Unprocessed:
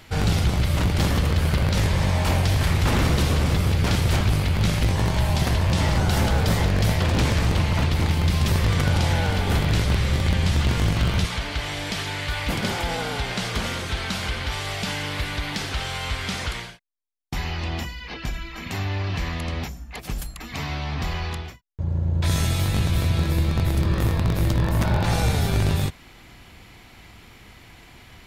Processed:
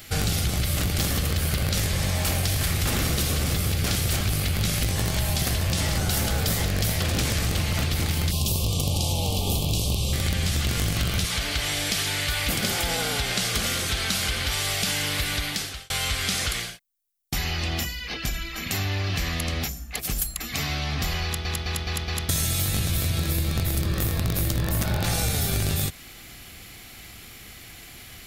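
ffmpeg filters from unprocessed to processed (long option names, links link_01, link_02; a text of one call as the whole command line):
ffmpeg -i in.wav -filter_complex "[0:a]asettb=1/sr,asplit=3[link_01][link_02][link_03];[link_01]atrim=end=8.314[link_04];[link_02]atrim=start=8.31:end=10.13,asetpts=PTS-STARTPTS,afade=type=in:duration=0.004:curve=qsin,afade=type=out:start_time=1.816:duration=0.004:curve=qsin,asuperstop=centerf=1700:order=8:qfactor=1.1[link_05];[link_03]atrim=start=10.126[link_06];[link_04][link_05]acrossfade=duration=0.004:curve1=hsin:curve2=qsin[link_07];[link_07][link_06]acrossfade=duration=0.004:curve1=qsin:curve2=hsin,asplit=7[link_08][link_09][link_10][link_11][link_12][link_13][link_14];[link_08]atrim=end=15.9,asetpts=PTS-STARTPTS,afade=type=out:start_time=15.35:duration=0.55[link_15];[link_09]atrim=start=15.9:end=21.452,asetpts=PTS-STARTPTS,afade=type=in:duration=0.004:curve=hsin[link_16];[link_10]atrim=start=21.238:end=21.452[link_17];[link_11]atrim=start=21.238:end=21.452[link_18];[link_12]atrim=start=21.238:end=21.452[link_19];[link_13]atrim=start=21.238:end=21.452[link_20];[link_14]atrim=start=22.288[link_21];[link_15][link_16]concat=n=2:v=0:a=1[link_22];[link_22][link_17]acrossfade=duration=0.004:curve1=hsin:curve2=hsin[link_23];[link_23][link_18]acrossfade=duration=0.004:curve1=hsin:curve2=hsin[link_24];[link_24][link_19]acrossfade=duration=0.004:curve1=hsin:curve2=hsin[link_25];[link_25][link_20]acrossfade=duration=0.004:curve1=hsin:curve2=hsin[link_26];[link_26][link_21]acrossfade=duration=0.004:curve1=hsin:curve2=hsin,aemphasis=mode=production:type=75kf,bandreject=frequency=950:width=5.5,acompressor=threshold=-21dB:ratio=6" out.wav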